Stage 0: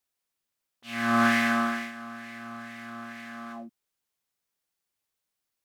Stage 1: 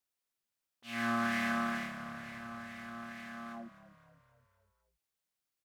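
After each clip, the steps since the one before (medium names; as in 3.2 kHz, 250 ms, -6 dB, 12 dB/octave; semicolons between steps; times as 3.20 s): compression, threshold -24 dBFS, peak gain reduction 6.5 dB; frequency-shifting echo 257 ms, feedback 55%, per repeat -35 Hz, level -14.5 dB; trim -5 dB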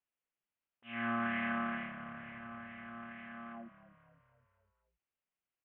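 steep low-pass 3.1 kHz 72 dB/octave; trim -2.5 dB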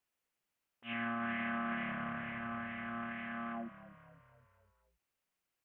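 peak limiter -35 dBFS, peak gain reduction 11 dB; trim +6 dB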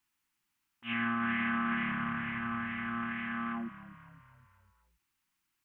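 high-order bell 540 Hz -14 dB 1 oct; trim +6 dB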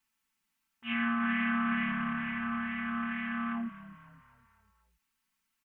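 comb 4.5 ms, depth 72%; trim -1.5 dB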